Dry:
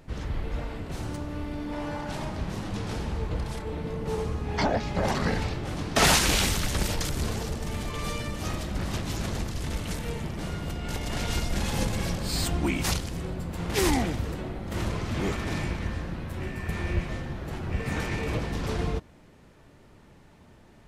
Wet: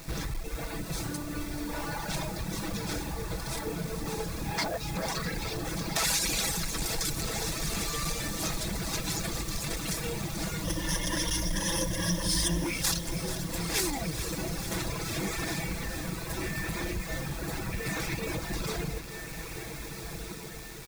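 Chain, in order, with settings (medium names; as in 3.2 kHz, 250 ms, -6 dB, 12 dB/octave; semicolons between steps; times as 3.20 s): comb 6.1 ms, depth 59%; compression 5:1, threshold -31 dBFS, peak gain reduction 14.5 dB; echo that smears into a reverb 1558 ms, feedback 41%, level -8 dB; reverb removal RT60 1.7 s; hard clipper -31.5 dBFS, distortion -15 dB; 10.64–12.64 s: rippled EQ curve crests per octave 1.2, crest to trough 16 dB; bit crusher 9-bit; treble shelf 2.6 kHz +9.5 dB; band-stop 3 kHz, Q 7; bit-crushed delay 437 ms, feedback 80%, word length 9-bit, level -12 dB; trim +3 dB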